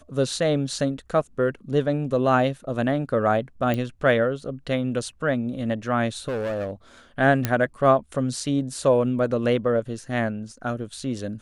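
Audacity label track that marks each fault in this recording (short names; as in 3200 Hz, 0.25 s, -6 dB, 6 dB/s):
3.740000	3.740000	pop -14 dBFS
6.280000	6.710000	clipped -24 dBFS
7.450000	7.450000	pop -7 dBFS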